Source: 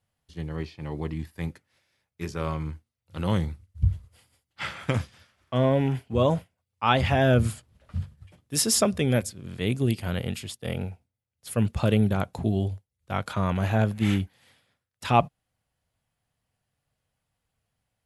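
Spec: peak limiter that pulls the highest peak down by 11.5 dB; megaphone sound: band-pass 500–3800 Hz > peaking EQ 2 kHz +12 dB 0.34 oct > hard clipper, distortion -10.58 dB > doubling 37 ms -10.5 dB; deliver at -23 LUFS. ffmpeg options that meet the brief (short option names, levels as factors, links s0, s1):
-filter_complex "[0:a]alimiter=limit=0.158:level=0:latency=1,highpass=500,lowpass=3800,equalizer=f=2000:t=o:w=0.34:g=12,asoftclip=type=hard:threshold=0.0473,asplit=2[s0][s1];[s1]adelay=37,volume=0.299[s2];[s0][s2]amix=inputs=2:normalize=0,volume=3.98"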